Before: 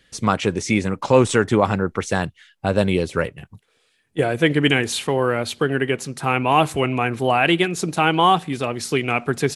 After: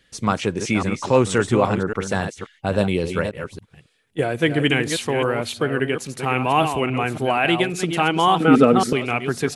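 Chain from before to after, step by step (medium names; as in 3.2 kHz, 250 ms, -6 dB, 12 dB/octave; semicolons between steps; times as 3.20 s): chunks repeated in reverse 276 ms, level -7.5 dB; 8.40–8.93 s: small resonant body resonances 250/450/1300 Hz, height 17 dB, ringing for 30 ms; trim -2 dB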